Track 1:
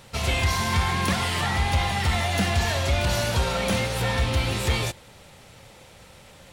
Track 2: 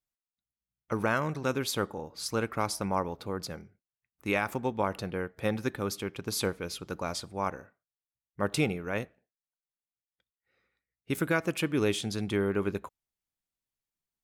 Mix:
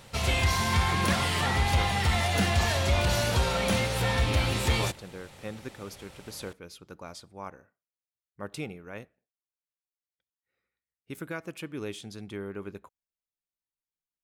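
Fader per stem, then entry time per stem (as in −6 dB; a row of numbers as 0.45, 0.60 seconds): −2.0, −9.0 decibels; 0.00, 0.00 seconds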